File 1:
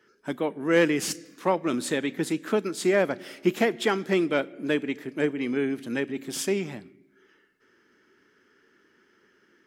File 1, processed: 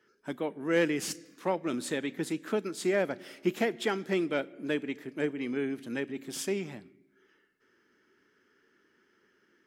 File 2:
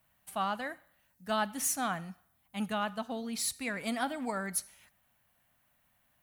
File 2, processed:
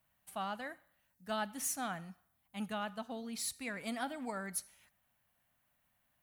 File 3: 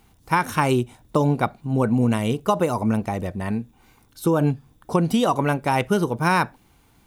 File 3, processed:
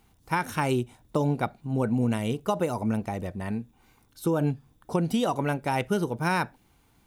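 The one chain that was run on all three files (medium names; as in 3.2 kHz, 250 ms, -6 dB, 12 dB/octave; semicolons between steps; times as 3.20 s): dynamic bell 1.1 kHz, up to -6 dB, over -43 dBFS, Q 6; trim -5.5 dB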